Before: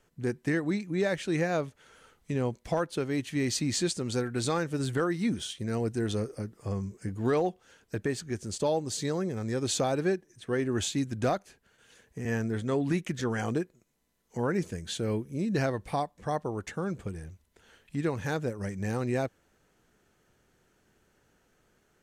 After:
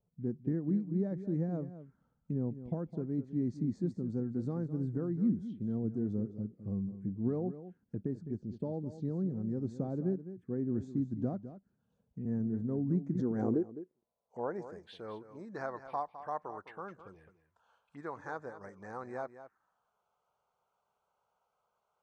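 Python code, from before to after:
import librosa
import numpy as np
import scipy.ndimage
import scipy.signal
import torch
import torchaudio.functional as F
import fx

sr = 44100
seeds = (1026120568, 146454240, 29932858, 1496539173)

y = fx.low_shelf(x, sr, hz=66.0, db=8.0)
y = fx.env_phaser(y, sr, low_hz=290.0, high_hz=2900.0, full_db=-28.5)
y = fx.filter_sweep_bandpass(y, sr, from_hz=200.0, to_hz=1100.0, start_s=12.92, end_s=14.96, q=1.8)
y = y + 10.0 ** (-12.5 / 20.0) * np.pad(y, (int(209 * sr / 1000.0), 0))[:len(y)]
y = fx.pre_swell(y, sr, db_per_s=27.0, at=(13.15, 13.59))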